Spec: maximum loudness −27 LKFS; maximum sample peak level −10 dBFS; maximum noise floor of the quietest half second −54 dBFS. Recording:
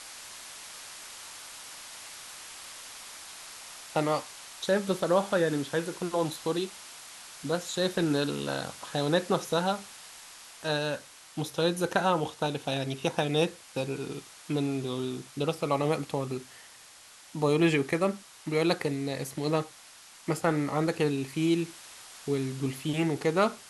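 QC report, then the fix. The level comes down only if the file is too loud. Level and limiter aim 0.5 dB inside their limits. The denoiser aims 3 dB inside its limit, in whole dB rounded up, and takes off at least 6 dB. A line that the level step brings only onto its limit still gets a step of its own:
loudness −30.0 LKFS: in spec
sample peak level −11.5 dBFS: in spec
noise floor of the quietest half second −52 dBFS: out of spec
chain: broadband denoise 6 dB, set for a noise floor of −52 dBFS

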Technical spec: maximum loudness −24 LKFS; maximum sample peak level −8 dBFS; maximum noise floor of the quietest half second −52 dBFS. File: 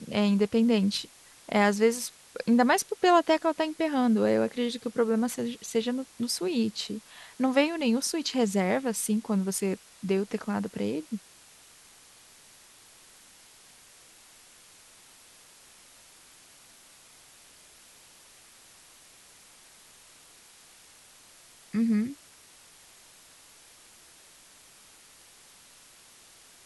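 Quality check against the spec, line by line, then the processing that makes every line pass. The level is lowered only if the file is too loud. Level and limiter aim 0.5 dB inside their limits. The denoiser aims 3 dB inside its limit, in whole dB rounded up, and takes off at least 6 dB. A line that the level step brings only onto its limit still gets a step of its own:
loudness −27.5 LKFS: in spec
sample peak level −9.5 dBFS: in spec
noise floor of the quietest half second −55 dBFS: in spec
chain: no processing needed

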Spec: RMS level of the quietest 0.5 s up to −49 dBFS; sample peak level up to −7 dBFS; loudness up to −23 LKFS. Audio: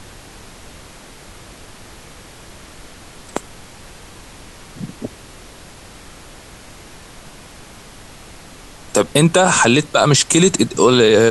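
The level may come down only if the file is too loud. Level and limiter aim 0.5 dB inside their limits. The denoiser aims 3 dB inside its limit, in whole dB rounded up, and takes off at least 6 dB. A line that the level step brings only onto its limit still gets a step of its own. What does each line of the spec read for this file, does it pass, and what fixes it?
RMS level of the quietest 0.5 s −40 dBFS: out of spec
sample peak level −2.0 dBFS: out of spec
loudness −13.5 LKFS: out of spec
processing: level −10 dB

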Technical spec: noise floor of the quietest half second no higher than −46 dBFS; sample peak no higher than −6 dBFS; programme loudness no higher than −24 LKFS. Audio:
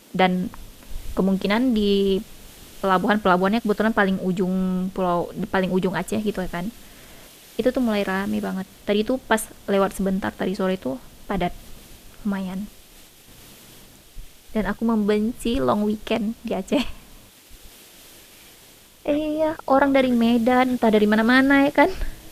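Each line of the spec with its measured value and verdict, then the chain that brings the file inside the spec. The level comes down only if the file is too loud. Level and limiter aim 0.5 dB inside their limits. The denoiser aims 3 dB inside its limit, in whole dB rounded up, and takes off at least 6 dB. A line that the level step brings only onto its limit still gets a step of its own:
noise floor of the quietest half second −50 dBFS: in spec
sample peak −3.5 dBFS: out of spec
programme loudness −22.0 LKFS: out of spec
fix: level −2.5 dB
brickwall limiter −6.5 dBFS

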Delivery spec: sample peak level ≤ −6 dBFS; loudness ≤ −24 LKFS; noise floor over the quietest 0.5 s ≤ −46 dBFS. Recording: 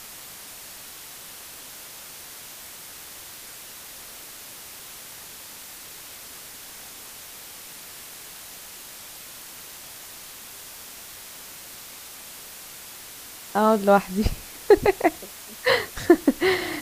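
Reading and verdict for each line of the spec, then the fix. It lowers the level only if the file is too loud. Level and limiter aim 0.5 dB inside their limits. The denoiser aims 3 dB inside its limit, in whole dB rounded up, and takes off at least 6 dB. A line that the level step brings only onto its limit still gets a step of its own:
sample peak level −2.5 dBFS: out of spec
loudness −22.0 LKFS: out of spec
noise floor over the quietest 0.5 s −42 dBFS: out of spec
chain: broadband denoise 6 dB, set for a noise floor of −42 dBFS
level −2.5 dB
brickwall limiter −6.5 dBFS

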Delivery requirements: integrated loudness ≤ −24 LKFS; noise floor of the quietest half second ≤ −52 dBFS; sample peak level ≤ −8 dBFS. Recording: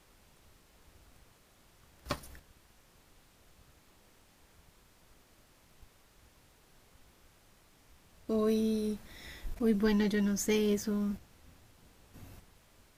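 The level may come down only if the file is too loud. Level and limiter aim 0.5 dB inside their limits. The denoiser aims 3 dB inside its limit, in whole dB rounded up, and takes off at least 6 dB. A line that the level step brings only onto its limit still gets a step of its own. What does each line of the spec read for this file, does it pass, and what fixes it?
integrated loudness −32.0 LKFS: in spec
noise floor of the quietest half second −63 dBFS: in spec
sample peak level −17.5 dBFS: in spec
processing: no processing needed

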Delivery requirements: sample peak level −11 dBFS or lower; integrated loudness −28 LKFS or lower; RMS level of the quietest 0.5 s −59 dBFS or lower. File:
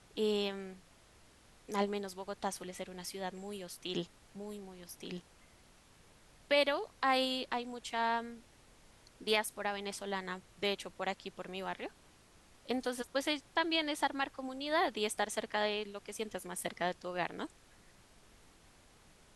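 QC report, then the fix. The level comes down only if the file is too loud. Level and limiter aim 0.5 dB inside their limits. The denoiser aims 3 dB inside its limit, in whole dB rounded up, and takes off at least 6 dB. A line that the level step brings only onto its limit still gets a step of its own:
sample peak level −16.5 dBFS: in spec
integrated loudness −36.5 LKFS: in spec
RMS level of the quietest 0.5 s −62 dBFS: in spec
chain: no processing needed

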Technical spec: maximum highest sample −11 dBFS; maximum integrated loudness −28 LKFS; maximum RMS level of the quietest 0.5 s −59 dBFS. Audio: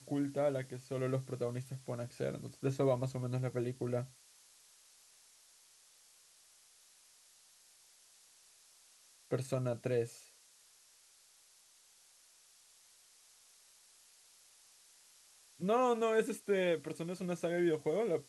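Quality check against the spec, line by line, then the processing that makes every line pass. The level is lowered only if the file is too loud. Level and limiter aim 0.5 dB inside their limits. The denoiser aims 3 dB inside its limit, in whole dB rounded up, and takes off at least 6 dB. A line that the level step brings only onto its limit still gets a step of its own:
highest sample −19.5 dBFS: in spec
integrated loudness −36.0 LKFS: in spec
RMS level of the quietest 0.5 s −65 dBFS: in spec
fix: no processing needed

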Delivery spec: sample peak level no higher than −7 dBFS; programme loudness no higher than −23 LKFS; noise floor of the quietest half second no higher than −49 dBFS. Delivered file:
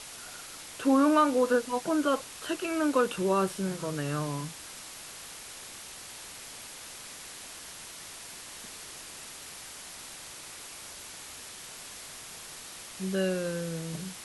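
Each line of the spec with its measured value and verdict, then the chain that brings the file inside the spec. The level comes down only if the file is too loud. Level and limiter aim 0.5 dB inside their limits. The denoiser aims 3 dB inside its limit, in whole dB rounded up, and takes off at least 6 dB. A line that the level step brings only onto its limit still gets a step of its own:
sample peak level −13.5 dBFS: in spec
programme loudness −32.5 LKFS: in spec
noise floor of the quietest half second −45 dBFS: out of spec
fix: broadband denoise 7 dB, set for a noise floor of −45 dBFS

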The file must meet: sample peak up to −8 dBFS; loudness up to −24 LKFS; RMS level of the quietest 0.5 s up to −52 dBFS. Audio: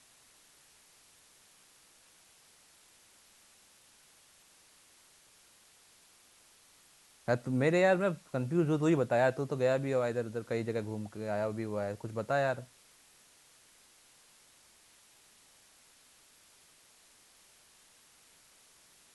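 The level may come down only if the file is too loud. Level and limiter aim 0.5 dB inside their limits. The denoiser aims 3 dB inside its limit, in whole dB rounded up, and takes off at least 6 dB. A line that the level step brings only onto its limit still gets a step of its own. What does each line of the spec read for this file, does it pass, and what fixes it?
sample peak −15.0 dBFS: in spec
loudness −31.5 LKFS: in spec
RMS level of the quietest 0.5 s −62 dBFS: in spec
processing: no processing needed

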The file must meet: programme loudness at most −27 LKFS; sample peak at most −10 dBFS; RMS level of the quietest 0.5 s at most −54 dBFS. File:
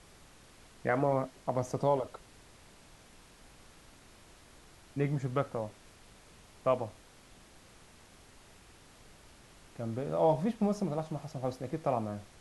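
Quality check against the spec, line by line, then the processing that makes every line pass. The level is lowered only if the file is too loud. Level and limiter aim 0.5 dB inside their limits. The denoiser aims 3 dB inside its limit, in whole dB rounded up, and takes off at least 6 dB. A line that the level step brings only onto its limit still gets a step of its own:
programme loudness −33.5 LKFS: in spec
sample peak −16.0 dBFS: in spec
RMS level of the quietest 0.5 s −57 dBFS: in spec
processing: no processing needed

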